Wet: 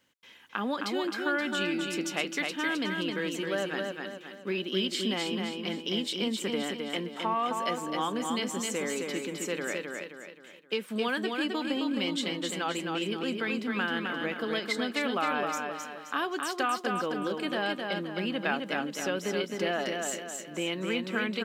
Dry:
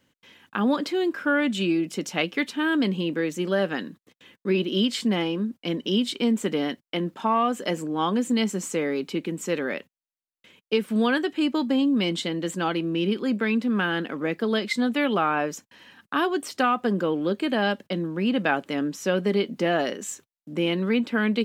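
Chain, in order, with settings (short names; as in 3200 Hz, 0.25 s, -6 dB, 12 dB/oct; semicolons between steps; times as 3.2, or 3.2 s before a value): low shelf 410 Hz -10 dB; compressor 1.5:1, threshold -31 dBFS, peak gain reduction 4.5 dB; on a send: feedback echo 0.263 s, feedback 43%, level -4 dB; on the sum: gain -1 dB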